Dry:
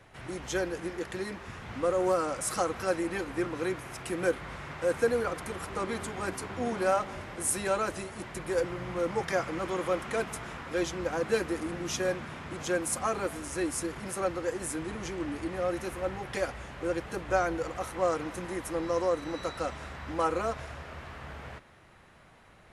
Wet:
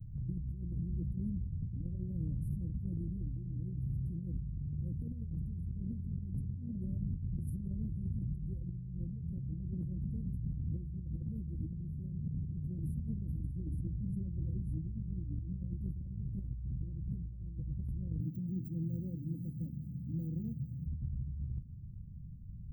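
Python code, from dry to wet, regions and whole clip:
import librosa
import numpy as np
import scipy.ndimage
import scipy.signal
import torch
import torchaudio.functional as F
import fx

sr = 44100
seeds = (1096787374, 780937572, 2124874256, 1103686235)

y = fx.chain(x, sr, fx.lowpass(hz=9800.0, slope=12),
    fx.hum_notches(base_hz=50, count=10), at=(13.55, 15.76))
y = fx.chain(y, sr, fx.highpass(hz=140.0, slope=24),
    fx.hum_notches(base_hz=50, count=8),
    fx.resample_linear(factor=3), at=(18.2, 20.86))
y = scipy.signal.sosfilt(scipy.signal.cheby2(4, 80, [860.0, 5900.0], 'bandstop', fs=sr, output='sos'), y)
y = fx.bass_treble(y, sr, bass_db=6, treble_db=-4)
y = fx.over_compress(y, sr, threshold_db=-45.0, ratio=-1.0)
y = y * librosa.db_to_amplitude(7.0)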